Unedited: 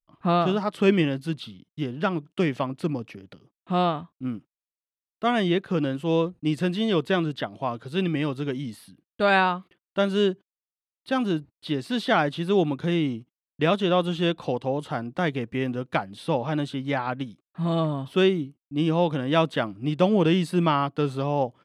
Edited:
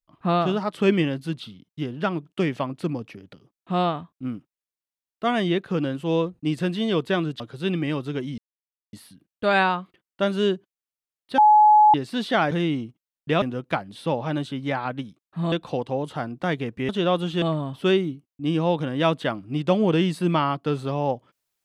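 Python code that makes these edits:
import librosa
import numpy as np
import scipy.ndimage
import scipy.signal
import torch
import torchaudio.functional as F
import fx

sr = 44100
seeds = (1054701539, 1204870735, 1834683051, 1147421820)

y = fx.edit(x, sr, fx.cut(start_s=7.4, length_s=0.32),
    fx.insert_silence(at_s=8.7, length_s=0.55),
    fx.bleep(start_s=11.15, length_s=0.56, hz=848.0, db=-10.5),
    fx.cut(start_s=12.28, length_s=0.55),
    fx.swap(start_s=13.74, length_s=0.53, other_s=15.64, other_length_s=2.1), tone=tone)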